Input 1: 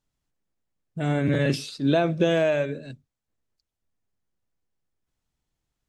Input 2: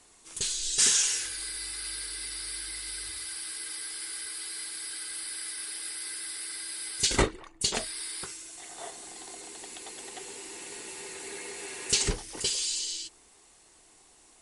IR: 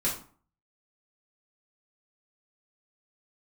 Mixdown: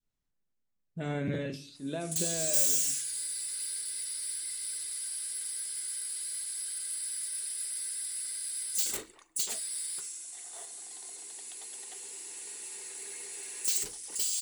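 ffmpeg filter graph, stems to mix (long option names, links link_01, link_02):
-filter_complex "[0:a]volume=-8.5dB,afade=type=out:start_time=1.28:duration=0.23:silence=0.446684,asplit=2[link_01][link_02];[link_02]volume=-15.5dB[link_03];[1:a]adynamicequalizer=threshold=0.00447:dfrequency=7600:dqfactor=5.3:tfrequency=7600:tqfactor=5.3:attack=5:release=100:ratio=0.375:range=3:mode=boostabove:tftype=bell,asoftclip=type=tanh:threshold=-25dB,aemphasis=mode=production:type=bsi,adelay=1750,volume=-10dB,asplit=2[link_04][link_05];[link_05]volume=-23dB[link_06];[2:a]atrim=start_sample=2205[link_07];[link_03][link_06]amix=inputs=2:normalize=0[link_08];[link_08][link_07]afir=irnorm=-1:irlink=0[link_09];[link_01][link_04][link_09]amix=inputs=3:normalize=0,adynamicequalizer=threshold=0.00224:dfrequency=1100:dqfactor=0.78:tfrequency=1100:tqfactor=0.78:attack=5:release=100:ratio=0.375:range=2.5:mode=cutabove:tftype=bell"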